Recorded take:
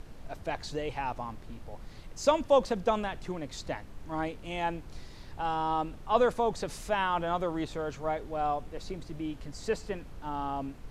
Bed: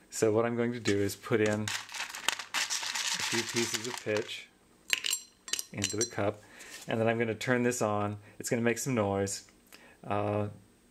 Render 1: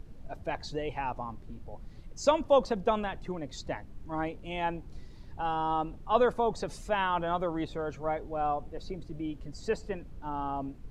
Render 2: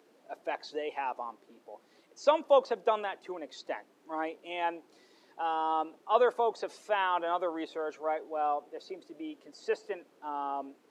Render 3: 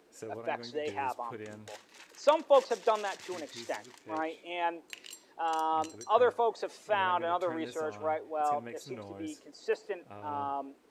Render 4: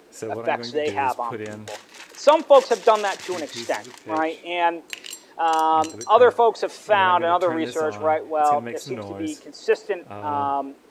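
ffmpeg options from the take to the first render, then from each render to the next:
-af "afftdn=nr=10:nf=-47"
-filter_complex "[0:a]acrossover=split=4800[s0][s1];[s1]acompressor=threshold=0.00141:ratio=4:attack=1:release=60[s2];[s0][s2]amix=inputs=2:normalize=0,highpass=f=340:w=0.5412,highpass=f=340:w=1.3066"
-filter_complex "[1:a]volume=0.15[s0];[0:a][s0]amix=inputs=2:normalize=0"
-af "volume=3.76,alimiter=limit=0.708:level=0:latency=1"

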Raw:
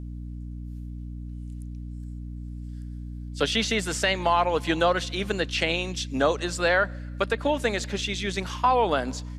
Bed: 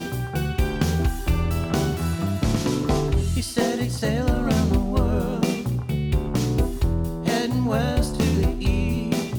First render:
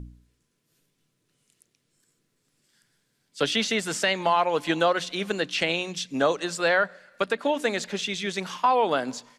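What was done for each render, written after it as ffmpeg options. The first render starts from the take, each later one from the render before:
-af "bandreject=f=60:t=h:w=4,bandreject=f=120:t=h:w=4,bandreject=f=180:t=h:w=4,bandreject=f=240:t=h:w=4,bandreject=f=300:t=h:w=4"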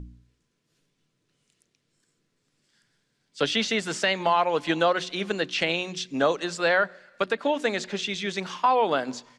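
-af "lowpass=6900,bandreject=f=122.7:t=h:w=4,bandreject=f=245.4:t=h:w=4,bandreject=f=368.1:t=h:w=4"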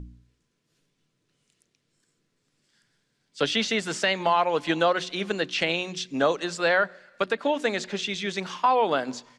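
-af anull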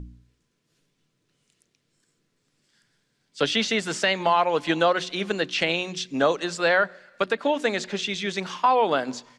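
-af "volume=1.19"

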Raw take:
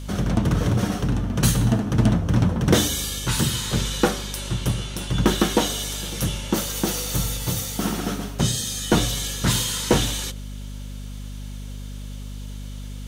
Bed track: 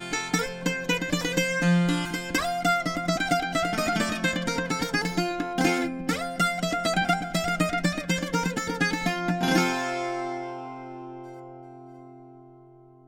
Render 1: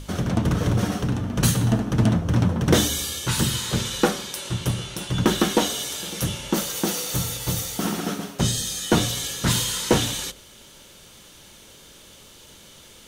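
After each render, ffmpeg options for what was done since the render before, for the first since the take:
-af "bandreject=f=50:t=h:w=6,bandreject=f=100:t=h:w=6,bandreject=f=150:t=h:w=6,bandreject=f=200:t=h:w=6,bandreject=f=250:t=h:w=6"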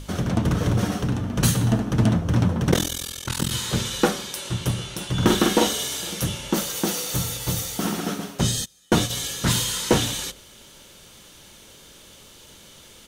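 -filter_complex "[0:a]asettb=1/sr,asplit=3[s0][s1][s2];[s0]atrim=end=2.714[s3];[s1]atrim=start=2.71:end=3.51,asetpts=PTS-STARTPTS,afade=t=in:d=0.004:c=qsin,afade=t=out:st=0.796:d=0.004:c=qsin,tremolo=f=42:d=0.974[s4];[s2]atrim=start=3.506[s5];[s3][s4]acrossfade=d=0.004:c1=hsin:c2=qsin[s6];[s6][s5]acrossfade=d=0.004:c1=qsin:c2=hsin,asplit=3[s7][s8][s9];[s7]afade=t=out:st=5.19:d=0.02[s10];[s8]asplit=2[s11][s12];[s12]adelay=45,volume=0.668[s13];[s11][s13]amix=inputs=2:normalize=0,afade=t=in:st=5.19:d=0.02,afade=t=out:st=6.14:d=0.02[s14];[s9]afade=t=in:st=6.14:d=0.02[s15];[s10][s14][s15]amix=inputs=3:normalize=0,asplit=3[s16][s17][s18];[s16]afade=t=out:st=8.64:d=0.02[s19];[s17]agate=range=0.0447:threshold=0.0562:ratio=16:release=100:detection=peak,afade=t=in:st=8.64:d=0.02,afade=t=out:st=9.09:d=0.02[s20];[s18]afade=t=in:st=9.09:d=0.02[s21];[s19][s20][s21]amix=inputs=3:normalize=0"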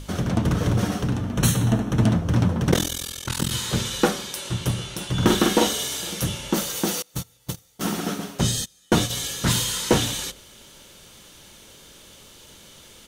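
-filter_complex "[0:a]asettb=1/sr,asplit=3[s0][s1][s2];[s0]atrim=end=1.334[s3];[s1]atrim=start=1.33:end=2.03,asetpts=PTS-STARTPTS,afade=t=in:d=0.004:c=qsin,afade=t=out:st=0.696:d=0.004:c=qsin,asuperstop=centerf=4800:order=4:qfactor=6.5[s4];[s2]atrim=start=2.026[s5];[s3][s4]acrossfade=d=0.004:c1=hsin:c2=qsin[s6];[s6][s5]acrossfade=d=0.004:c1=qsin:c2=hsin,asettb=1/sr,asplit=3[s7][s8][s9];[s7]atrim=end=7.024[s10];[s8]atrim=start=7.02:end=7.81,asetpts=PTS-STARTPTS,afade=t=in:d=0.004:c=qsin,afade=t=out:st=0.786:d=0.004:c=qsin,agate=range=0.0398:threshold=0.0708:ratio=16:release=100:detection=peak[s11];[s9]atrim=start=7.806[s12];[s10][s11]acrossfade=d=0.004:c1=hsin:c2=qsin[s13];[s13][s12]acrossfade=d=0.004:c1=qsin:c2=hsin"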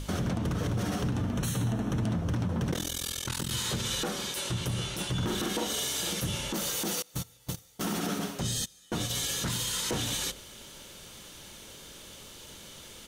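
-af "acompressor=threshold=0.0708:ratio=6,alimiter=limit=0.0794:level=0:latency=1:release=38"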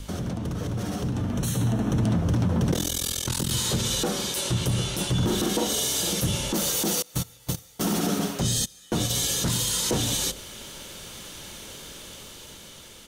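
-filter_complex "[0:a]acrossover=split=300|950|3300[s0][s1][s2][s3];[s2]alimiter=level_in=6.31:limit=0.0631:level=0:latency=1:release=132,volume=0.158[s4];[s0][s1][s4][s3]amix=inputs=4:normalize=0,dynaudnorm=f=420:g=7:m=2.24"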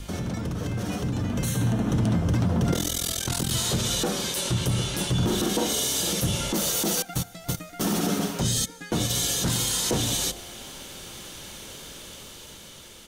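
-filter_complex "[1:a]volume=0.15[s0];[0:a][s0]amix=inputs=2:normalize=0"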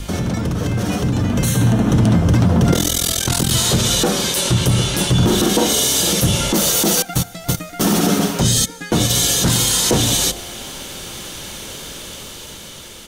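-af "volume=2.99"

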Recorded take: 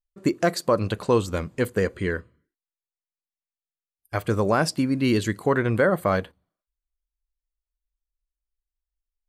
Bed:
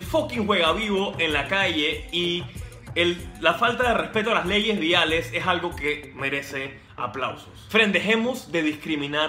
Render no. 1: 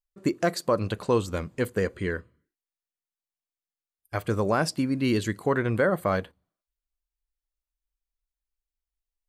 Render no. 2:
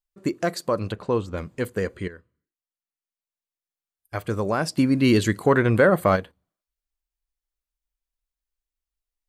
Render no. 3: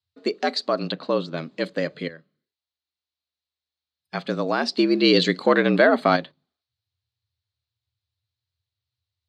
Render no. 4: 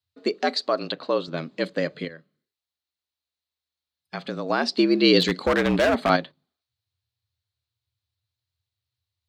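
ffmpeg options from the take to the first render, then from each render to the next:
-af "volume=0.708"
-filter_complex "[0:a]asettb=1/sr,asplit=3[s0][s1][s2];[s0]atrim=end=0.924[s3];[s1]atrim=start=0.92:end=1.38,asetpts=PTS-STARTPTS,afade=t=in:d=0.004:c=qsin,afade=t=out:st=0.456:d=0.004:c=qsin,aemphasis=mode=reproduction:type=75kf[s4];[s2]atrim=start=1.376[s5];[s3][s4]acrossfade=d=0.004:c1=hsin:c2=qsin[s6];[s6][s5]acrossfade=d=0.004:c1=qsin:c2=hsin,asplit=3[s7][s8][s9];[s7]afade=t=out:st=4.76:d=0.02[s10];[s8]acontrast=68,afade=t=in:st=4.76:d=0.02,afade=t=out:st=6.15:d=0.02[s11];[s9]afade=t=in:st=6.15:d=0.02[s12];[s10][s11][s12]amix=inputs=3:normalize=0,asplit=2[s13][s14];[s13]atrim=end=2.08,asetpts=PTS-STARTPTS,afade=t=out:st=2.076:d=0.004:c=hsin:silence=0.211349[s15];[s14]atrim=start=2.08,asetpts=PTS-STARTPTS,afade=t=in:d=2.08:silence=0.211349[s16];[s15][s16]concat=n=2:v=0:a=1"
-af "afreqshift=75,lowpass=f=4100:t=q:w=5"
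-filter_complex "[0:a]asettb=1/sr,asplit=3[s0][s1][s2];[s0]atrim=end=0.574[s3];[s1]atrim=start=0.57:end=1.28,asetpts=PTS-STARTPTS,afade=t=in:d=0.004:c=qsin,afade=t=out:st=0.706:d=0.004:c=qsin,equalizer=f=190:t=o:w=0.77:g=-8.5[s4];[s2]atrim=start=1.276[s5];[s3][s4]acrossfade=d=0.004:c1=hsin:c2=qsin[s6];[s6][s5]acrossfade=d=0.004:c1=qsin:c2=hsin,asettb=1/sr,asplit=3[s7][s8][s9];[s7]atrim=end=2.044[s10];[s8]atrim=start=2.04:end=4.5,asetpts=PTS-STARTPTS,afade=t=in:d=0.004:c=qsin,afade=t=out:st=2.456:d=0.004:c=qsin,acompressor=threshold=0.0355:ratio=2:attack=3.2:release=140:knee=1:detection=peak[s11];[s9]atrim=start=4.496[s12];[s10][s11]acrossfade=d=0.004:c1=hsin:c2=qsin[s13];[s13][s12]acrossfade=d=0.004:c1=qsin:c2=hsin,asettb=1/sr,asplit=3[s14][s15][s16];[s14]atrim=end=5.204[s17];[s15]atrim=start=5.2:end=6.1,asetpts=PTS-STARTPTS,afade=t=in:d=0.004:c=qsin,afade=t=out:st=0.896:d=0.004:c=qsin,asoftclip=type=hard:threshold=0.158[s18];[s16]atrim=start=6.096[s19];[s17][s18]acrossfade=d=0.004:c1=hsin:c2=qsin[s20];[s20][s19]acrossfade=d=0.004:c1=qsin:c2=hsin"

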